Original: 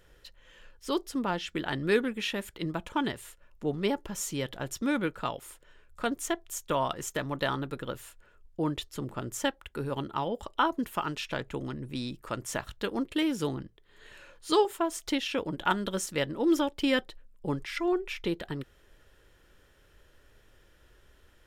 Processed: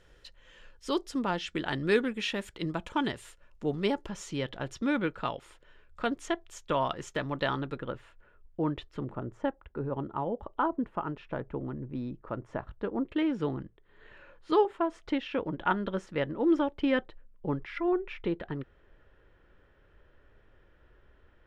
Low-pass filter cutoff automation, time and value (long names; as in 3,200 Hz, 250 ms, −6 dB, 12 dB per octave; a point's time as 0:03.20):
7,600 Hz
from 0:04.09 4,200 Hz
from 0:07.78 2,200 Hz
from 0:09.15 1,100 Hz
from 0:13.06 2,000 Hz